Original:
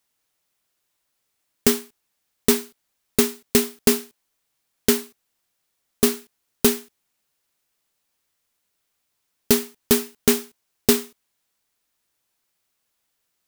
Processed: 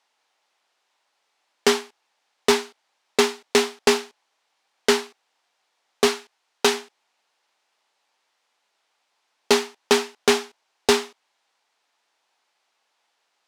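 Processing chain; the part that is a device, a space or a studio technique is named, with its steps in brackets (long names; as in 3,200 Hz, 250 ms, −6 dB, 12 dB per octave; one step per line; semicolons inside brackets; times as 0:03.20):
0:06.07–0:06.74: low-shelf EQ 420 Hz −5.5 dB
intercom (band-pass filter 450–4,800 Hz; parametric band 840 Hz +7 dB 0.55 octaves; soft clipping −16 dBFS, distortion −14 dB)
level +8 dB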